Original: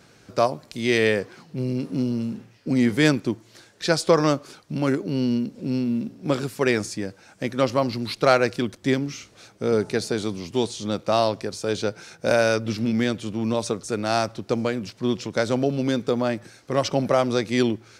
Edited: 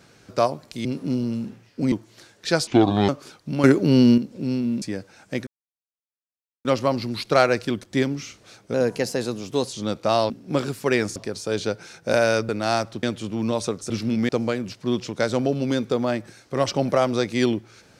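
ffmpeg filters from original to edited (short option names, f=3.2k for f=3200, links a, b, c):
-filter_complex "[0:a]asplit=17[a][b][c][d][e][f][g][h][i][j][k][l][m][n][o][p][q];[a]atrim=end=0.852[r];[b]atrim=start=1.728:end=2.802[s];[c]atrim=start=3.288:end=4.044[t];[d]atrim=start=4.04:end=4.32,asetpts=PTS-STARTPTS,asetrate=29547,aresample=44100[u];[e]atrim=start=4.316:end=4.872[v];[f]atrim=start=4.868:end=5.412,asetpts=PTS-STARTPTS,volume=8dB[w];[g]atrim=start=5.408:end=6.052[x];[h]atrim=start=6.908:end=7.56,asetpts=PTS-STARTPTS,afade=t=out:st=0.648:d=0.004:c=hsin,apad=pad_dur=1.18[y];[i]atrim=start=7.56:end=9.654,asetpts=PTS-STARTPTS,afade=t=in:d=0.004:c=hsin[z];[j]atrim=start=9.65:end=10.76,asetpts=PTS-STARTPTS,asetrate=49392,aresample=44100,atrim=end_sample=43706,asetpts=PTS-STARTPTS[aa];[k]atrim=start=10.756:end=11.332[ab];[l]atrim=start=6.048:end=6.912[ac];[m]atrim=start=11.328:end=12.662[ad];[n]atrim=start=13.918:end=14.462[ae];[o]atrim=start=13.048:end=13.922[af];[p]atrim=start=12.658:end=13.052[ag];[q]atrim=start=14.458[ah];[r][s]acrossfade=d=0.004:c1=hsin:c2=hsin[ai];[ai][t]acrossfade=d=0.004:c1=hsin:c2=hsin[aj];[aj][u]acrossfade=d=0.004:c1=hsin:c2=hsin[ak];[ak][v]acrossfade=d=0.004:c1=hsin:c2=hsin[al];[al][w]acrossfade=d=0.004:c1=hsin:c2=hsin[am];[am][x]acrossfade=d=0.004:c1=hsin:c2=hsin[an];[y][z]concat=n=2:v=0:a=1[ao];[an][ao]acrossfade=d=0.004:c1=hsin:c2=hsin[ap];[ap][aa]acrossfade=d=0.004:c1=hsin:c2=hsin[aq];[aq][ab]acrossfade=d=0.004:c1=hsin:c2=hsin[ar];[ar][ac]acrossfade=d=0.004:c1=hsin:c2=hsin[as];[as][ad]acrossfade=d=0.004:c1=hsin:c2=hsin[at];[at][ae]acrossfade=d=0.004:c1=hsin:c2=hsin[au];[au][af]acrossfade=d=0.004:c1=hsin:c2=hsin[av];[av][ag]acrossfade=d=0.004:c1=hsin:c2=hsin[aw];[aw][ah]acrossfade=d=0.004:c1=hsin:c2=hsin"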